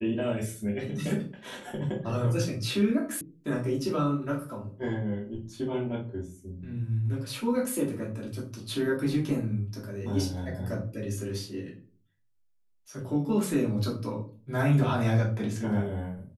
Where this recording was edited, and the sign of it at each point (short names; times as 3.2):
3.21 sound cut off